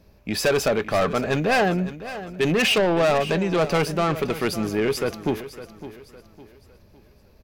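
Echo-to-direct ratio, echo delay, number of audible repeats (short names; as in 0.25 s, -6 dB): -13.5 dB, 0.558 s, 3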